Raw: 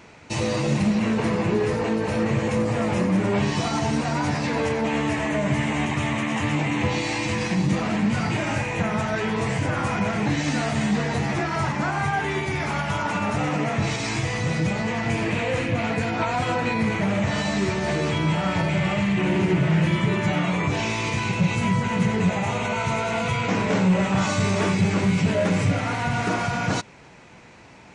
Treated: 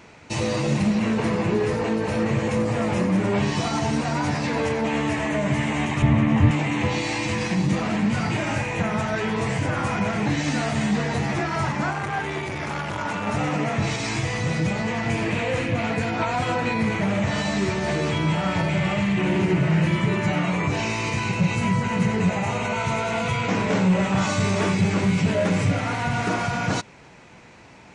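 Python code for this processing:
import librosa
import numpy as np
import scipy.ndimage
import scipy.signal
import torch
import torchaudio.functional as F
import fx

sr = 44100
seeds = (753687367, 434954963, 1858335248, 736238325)

y = fx.riaa(x, sr, side='playback', at=(6.02, 6.51))
y = fx.transformer_sat(y, sr, knee_hz=860.0, at=(11.93, 13.27))
y = fx.notch(y, sr, hz=3400.0, q=12.0, at=(19.46, 22.74))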